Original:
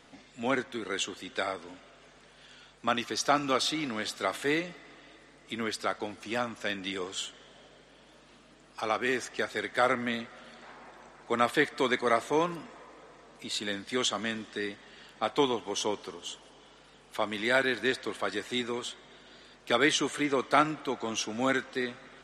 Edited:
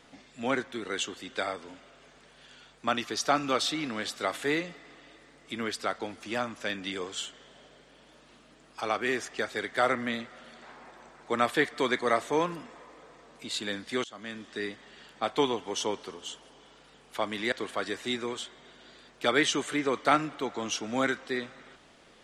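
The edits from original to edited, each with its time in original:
14.04–14.62 fade in, from -23.5 dB
17.52–17.98 cut

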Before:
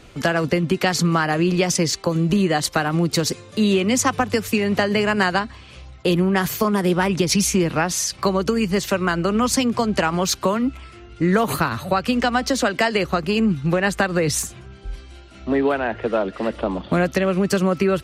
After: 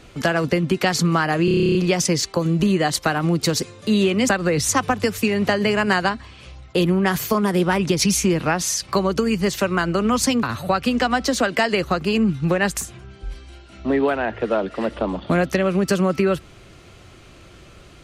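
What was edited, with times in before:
1.45 stutter 0.03 s, 11 plays
9.73–11.65 cut
13.99–14.39 move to 3.99

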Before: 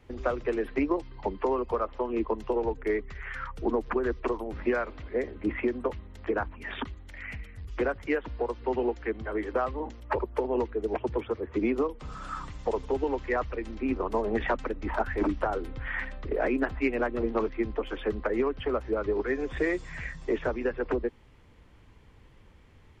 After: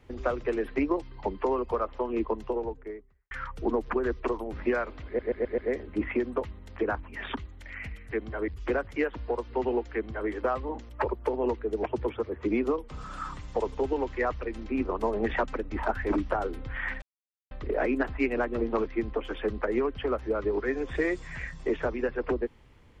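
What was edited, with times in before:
2.19–3.31 studio fade out
5.06 stutter 0.13 s, 5 plays
9.04–9.41 copy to 7.59
16.13 insert silence 0.49 s

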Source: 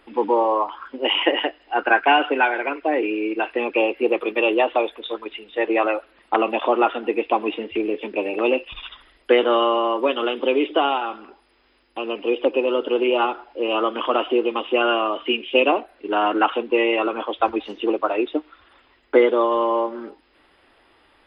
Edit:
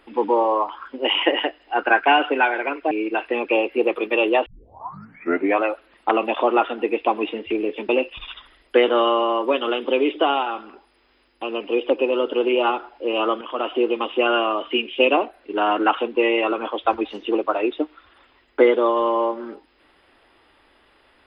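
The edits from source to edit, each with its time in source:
2.91–3.16 cut
4.71 tape start 1.15 s
8.14–8.44 cut
13.96–14.4 fade in, from -12 dB

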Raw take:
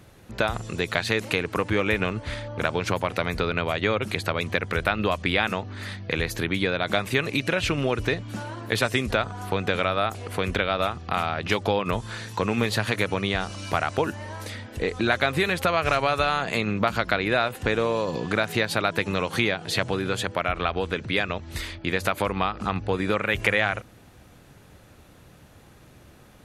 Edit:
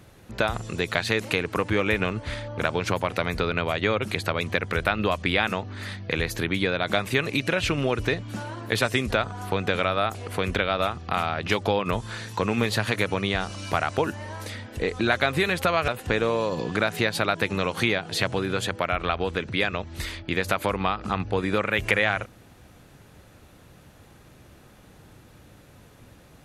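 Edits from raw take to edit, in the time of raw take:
15.88–17.44 cut

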